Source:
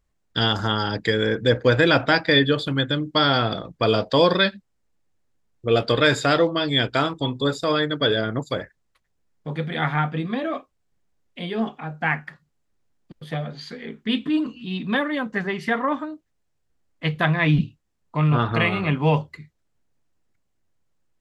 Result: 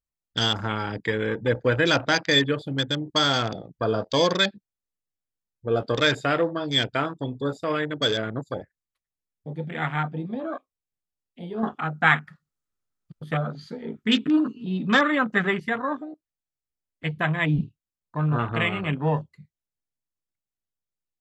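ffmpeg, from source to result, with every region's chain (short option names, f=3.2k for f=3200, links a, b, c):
-filter_complex "[0:a]asettb=1/sr,asplit=3[a][b][c];[a]atrim=end=11.634[d];[b]atrim=start=11.63:end=15.6,asetpts=PTS-STARTPTS,afade=t=in:d=0.004:c=qsin,afade=t=out:st=3.966:d=0.004:c=qsin,acontrast=59,equalizer=f=1.3k:w=5.1:g=11.5[e];[c]atrim=start=15.596[f];[d][e]acrossfade=d=0.004:c1=hsin:c2=qsin[g];[g][f]acrossfade=d=0.004:c1=qsin:c2=hsin,afwtdn=0.0398,highshelf=f=3.6k:g=9,volume=-4.5dB"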